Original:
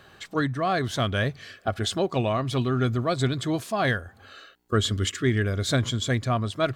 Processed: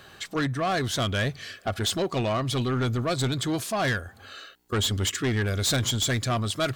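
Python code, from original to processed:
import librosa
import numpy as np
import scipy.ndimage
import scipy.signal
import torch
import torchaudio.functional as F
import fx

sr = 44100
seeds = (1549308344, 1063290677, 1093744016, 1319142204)

y = fx.high_shelf(x, sr, hz=3100.0, db=fx.steps((0.0, 6.5), (5.46, 12.0)))
y = 10.0 ** (-22.0 / 20.0) * np.tanh(y / 10.0 ** (-22.0 / 20.0))
y = y * librosa.db_to_amplitude(1.5)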